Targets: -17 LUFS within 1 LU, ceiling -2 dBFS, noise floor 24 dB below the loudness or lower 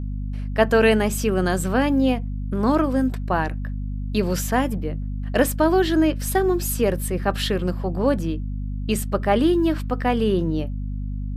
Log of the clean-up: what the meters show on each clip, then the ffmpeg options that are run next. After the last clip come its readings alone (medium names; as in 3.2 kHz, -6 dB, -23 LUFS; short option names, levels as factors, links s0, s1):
hum 50 Hz; highest harmonic 250 Hz; hum level -25 dBFS; loudness -22.0 LUFS; peak level -3.5 dBFS; loudness target -17.0 LUFS
-> -af "bandreject=f=50:t=h:w=4,bandreject=f=100:t=h:w=4,bandreject=f=150:t=h:w=4,bandreject=f=200:t=h:w=4,bandreject=f=250:t=h:w=4"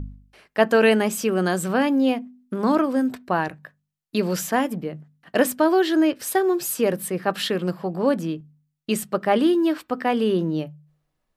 hum not found; loudness -22.5 LUFS; peak level -4.0 dBFS; loudness target -17.0 LUFS
-> -af "volume=1.88,alimiter=limit=0.794:level=0:latency=1"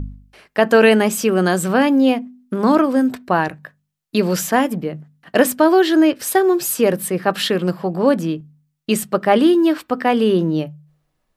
loudness -17.0 LUFS; peak level -2.0 dBFS; noise floor -72 dBFS